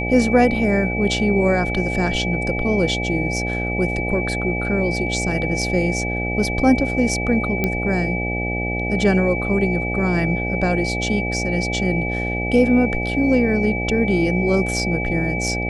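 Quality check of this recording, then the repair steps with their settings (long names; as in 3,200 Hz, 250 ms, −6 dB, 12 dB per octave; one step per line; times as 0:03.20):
mains buzz 60 Hz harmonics 14 −25 dBFS
whistle 2,300 Hz −25 dBFS
0:07.64: click −7 dBFS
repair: click removal
notch filter 2,300 Hz, Q 30
hum removal 60 Hz, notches 14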